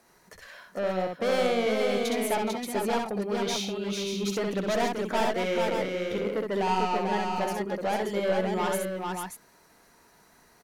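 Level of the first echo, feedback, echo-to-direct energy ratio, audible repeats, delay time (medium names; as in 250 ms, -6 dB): -4.0 dB, no regular repeats, 0.5 dB, 3, 64 ms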